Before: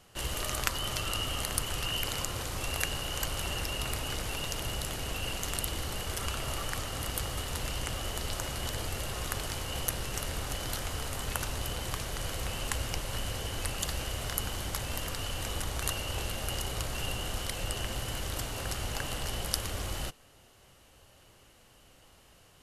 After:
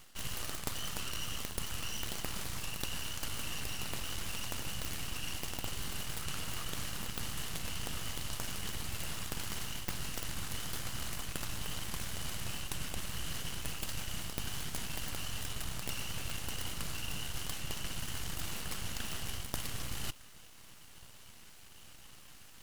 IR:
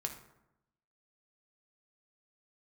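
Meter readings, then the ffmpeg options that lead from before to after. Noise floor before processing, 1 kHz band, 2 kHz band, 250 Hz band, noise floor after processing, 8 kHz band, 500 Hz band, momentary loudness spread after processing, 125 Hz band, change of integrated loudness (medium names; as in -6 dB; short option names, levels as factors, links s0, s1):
-59 dBFS, -7.5 dB, -5.5 dB, -4.0 dB, -53 dBFS, -4.5 dB, -10.0 dB, 5 LU, -6.5 dB, -5.5 dB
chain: -af "equalizer=f=530:w=1:g=-11.5,areverse,acompressor=threshold=0.00891:ratio=6,areverse,aeval=exprs='abs(val(0))':c=same,volume=2.37"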